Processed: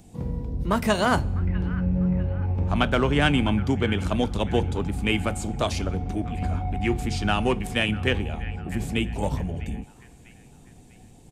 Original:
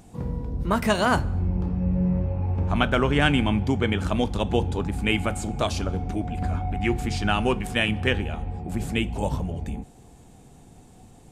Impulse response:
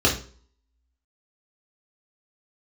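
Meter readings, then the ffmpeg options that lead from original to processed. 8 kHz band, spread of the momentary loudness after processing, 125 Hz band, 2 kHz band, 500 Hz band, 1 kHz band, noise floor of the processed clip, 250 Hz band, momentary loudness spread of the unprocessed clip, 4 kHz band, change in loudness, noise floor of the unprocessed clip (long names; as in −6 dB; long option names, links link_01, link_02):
0.0 dB, 10 LU, 0.0 dB, −1.0 dB, 0.0 dB, −0.5 dB, −50 dBFS, 0.0 dB, 10 LU, −0.5 dB, 0.0 dB, −50 dBFS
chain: -filter_complex "[0:a]acrossover=split=350|1500|2100[link_01][link_02][link_03][link_04];[link_02]adynamicsmooth=sensitivity=3.5:basefreq=970[link_05];[link_03]aecho=1:1:649|1298|1947|2596|3245:0.447|0.192|0.0826|0.0355|0.0153[link_06];[link_01][link_05][link_06][link_04]amix=inputs=4:normalize=0"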